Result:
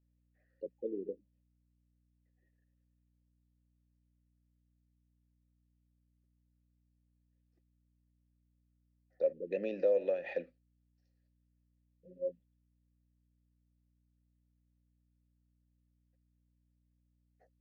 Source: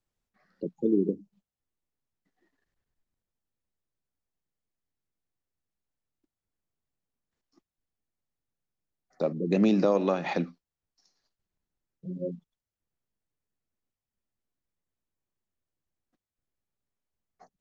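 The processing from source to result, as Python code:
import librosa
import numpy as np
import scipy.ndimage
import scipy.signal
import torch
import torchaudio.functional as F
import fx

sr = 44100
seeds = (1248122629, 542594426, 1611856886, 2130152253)

y = fx.vowel_filter(x, sr, vowel='e')
y = fx.add_hum(y, sr, base_hz=60, snr_db=31)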